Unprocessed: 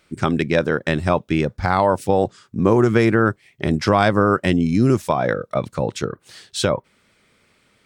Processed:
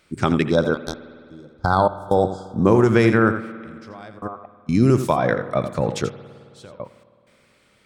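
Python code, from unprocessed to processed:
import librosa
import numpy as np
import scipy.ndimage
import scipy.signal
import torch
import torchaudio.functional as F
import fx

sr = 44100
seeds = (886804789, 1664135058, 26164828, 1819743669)

y = fx.formant_cascade(x, sr, vowel='a', at=(4.18, 4.66), fade=0.02)
y = y + 10.0 ** (-10.5 / 20.0) * np.pad(y, (int(85 * sr / 1000.0), 0))[:len(y)]
y = fx.step_gate(y, sr, bpm=64, pattern='xxxx...x.xx', floor_db=-24.0, edge_ms=4.5)
y = fx.power_curve(y, sr, exponent=3.0, at=(0.74, 1.27))
y = fx.spec_box(y, sr, start_s=0.51, length_s=2.16, low_hz=1600.0, high_hz=3200.0, gain_db=-27)
y = fx.rev_spring(y, sr, rt60_s=2.3, pass_ms=(53,), chirp_ms=25, drr_db=15.0)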